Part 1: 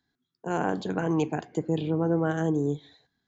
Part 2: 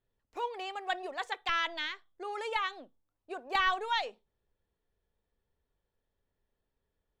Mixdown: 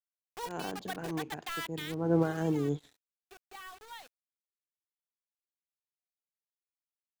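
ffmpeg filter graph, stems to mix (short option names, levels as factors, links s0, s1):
-filter_complex "[0:a]aeval=exprs='sgn(val(0))*max(abs(val(0))-0.00224,0)':c=same,volume=1.26[s0];[1:a]alimiter=limit=0.0841:level=0:latency=1:release=205,acrusher=bits=5:mix=0:aa=0.000001,volume=0.531,afade=t=out:st=1.76:d=0.72:silence=0.281838,asplit=2[s1][s2];[s2]apad=whole_len=144531[s3];[s0][s3]sidechaincompress=threshold=0.00224:ratio=10:attack=35:release=301[s4];[s4][s1]amix=inputs=2:normalize=0"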